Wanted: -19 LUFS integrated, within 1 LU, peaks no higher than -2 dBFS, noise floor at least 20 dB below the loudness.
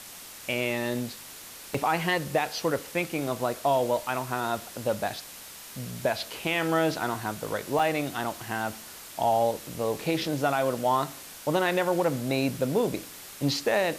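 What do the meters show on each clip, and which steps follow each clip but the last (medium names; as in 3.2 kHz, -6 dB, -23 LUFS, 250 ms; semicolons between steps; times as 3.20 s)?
dropouts 2; longest dropout 4.4 ms; noise floor -44 dBFS; noise floor target -48 dBFS; loudness -28.0 LUFS; peak level -14.0 dBFS; loudness target -19.0 LUFS
-> interpolate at 1.74/7.79 s, 4.4 ms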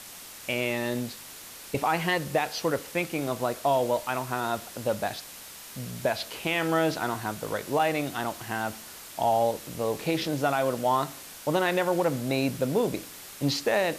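dropouts 0; noise floor -44 dBFS; noise floor target -48 dBFS
-> noise reduction 6 dB, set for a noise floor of -44 dBFS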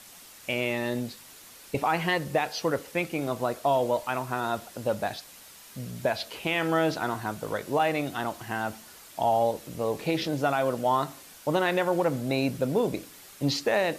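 noise floor -50 dBFS; loudness -28.5 LUFS; peak level -14.0 dBFS; loudness target -19.0 LUFS
-> trim +9.5 dB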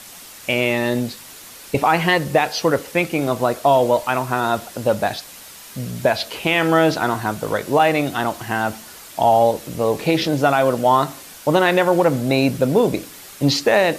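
loudness -19.0 LUFS; peak level -4.5 dBFS; noise floor -40 dBFS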